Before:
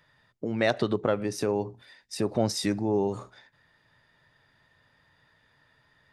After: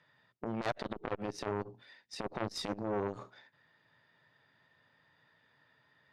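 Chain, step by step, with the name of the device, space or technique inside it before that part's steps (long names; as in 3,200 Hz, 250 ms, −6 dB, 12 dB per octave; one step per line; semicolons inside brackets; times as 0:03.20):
valve radio (band-pass filter 130–4,800 Hz; tube saturation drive 22 dB, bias 0.7; saturating transformer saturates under 950 Hz)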